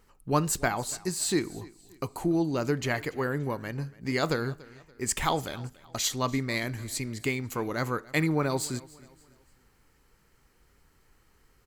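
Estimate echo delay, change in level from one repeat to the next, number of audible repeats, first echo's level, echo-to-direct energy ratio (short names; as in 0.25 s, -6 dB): 0.287 s, -8.0 dB, 2, -21.5 dB, -21.0 dB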